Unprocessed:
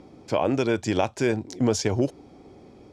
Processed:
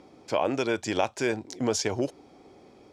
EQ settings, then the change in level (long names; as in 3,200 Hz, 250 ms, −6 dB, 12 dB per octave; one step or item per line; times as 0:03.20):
low-shelf EQ 280 Hz −11 dB
0.0 dB